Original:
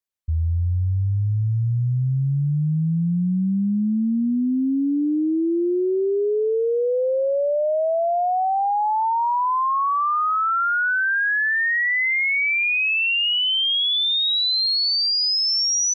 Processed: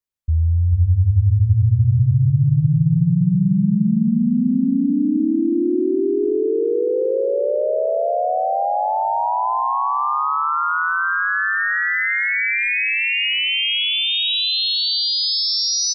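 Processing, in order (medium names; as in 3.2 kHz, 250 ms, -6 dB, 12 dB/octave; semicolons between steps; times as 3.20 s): bass shelf 190 Hz +7.5 dB; bouncing-ball echo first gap 440 ms, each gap 0.85×, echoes 5; trim -1.5 dB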